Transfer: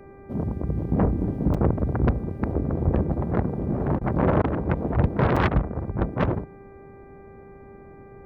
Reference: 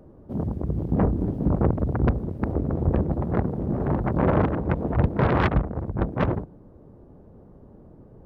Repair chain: de-hum 394.6 Hz, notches 6; interpolate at 1.54/5.36, 5.4 ms; interpolate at 3.99/4.42, 20 ms

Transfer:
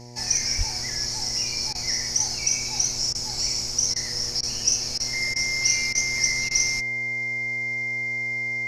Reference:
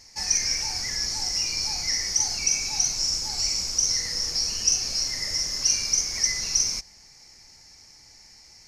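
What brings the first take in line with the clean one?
de-hum 121 Hz, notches 8; notch 2100 Hz, Q 30; de-plosive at 0.57; interpolate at 1.73/3.13/3.94/4.41/4.98/5.34/5.93/6.49, 18 ms

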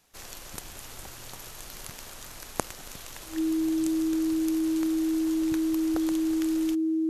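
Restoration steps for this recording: notch 320 Hz, Q 30

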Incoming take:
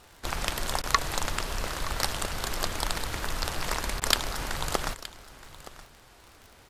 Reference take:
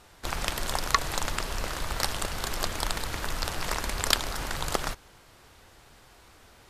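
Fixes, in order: de-click; interpolate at 0.82/4, 15 ms; inverse comb 0.921 s -17 dB

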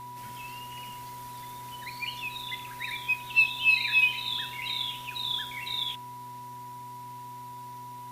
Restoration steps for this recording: de-hum 124.2 Hz, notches 3; notch 980 Hz, Q 30

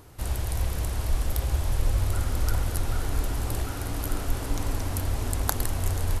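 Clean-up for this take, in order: clip repair -6.5 dBFS

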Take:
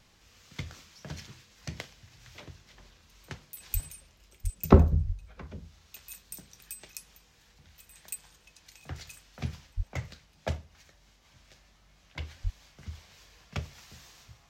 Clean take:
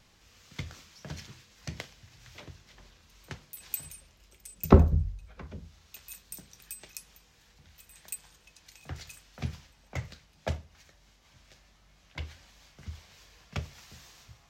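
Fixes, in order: de-plosive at 3.73/4.43/5.06/9.76/12.43

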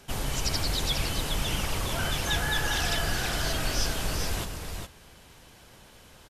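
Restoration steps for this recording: inverse comb 0.412 s -6 dB

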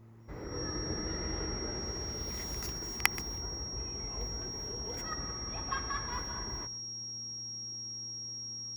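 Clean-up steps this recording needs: de-hum 112.9 Hz, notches 3; notch 5600 Hz, Q 30; inverse comb 0.128 s -18 dB

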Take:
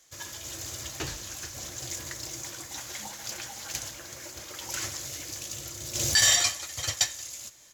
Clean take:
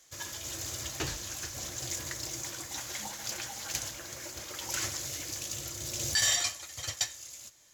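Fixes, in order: inverse comb 0.179 s -22.5 dB; gain 0 dB, from 5.95 s -6 dB

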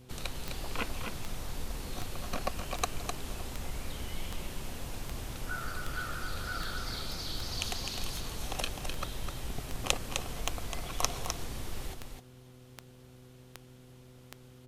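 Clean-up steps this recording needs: de-click; de-hum 125.9 Hz, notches 4; inverse comb 0.256 s -6 dB

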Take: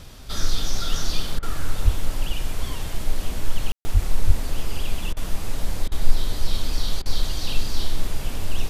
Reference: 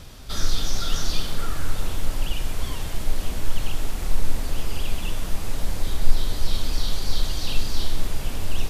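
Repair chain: de-plosive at 1.84/3.93/4.26; room tone fill 3.72–3.85; interpolate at 1.39/5.13/5.88/7.02, 36 ms

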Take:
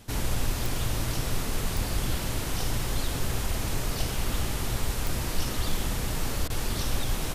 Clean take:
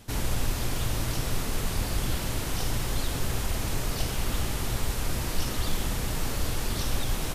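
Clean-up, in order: de-click; interpolate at 6.48, 18 ms

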